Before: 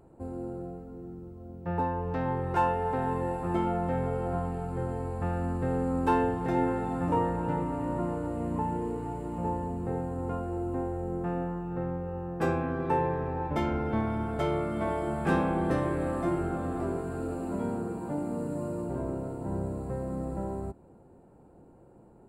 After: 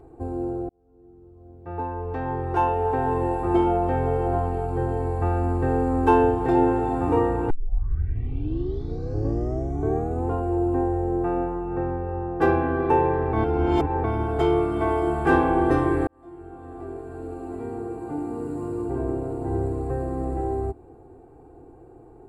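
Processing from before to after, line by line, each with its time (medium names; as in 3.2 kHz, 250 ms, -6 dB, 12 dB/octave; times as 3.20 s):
0.69–3.34 s: fade in
7.50 s: tape start 2.80 s
13.33–14.04 s: reverse
16.07–19.55 s: fade in
whole clip: treble shelf 2.8 kHz -8 dB; comb 2.6 ms, depth 92%; trim +5.5 dB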